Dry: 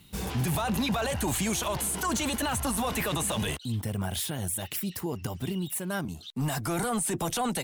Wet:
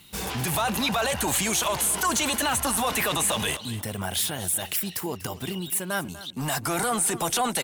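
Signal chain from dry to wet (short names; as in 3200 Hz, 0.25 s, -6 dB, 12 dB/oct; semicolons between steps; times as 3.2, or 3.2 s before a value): low shelf 360 Hz -10.5 dB; on a send: feedback echo 0.243 s, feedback 28%, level -16 dB; on the sum: gain +6.5 dB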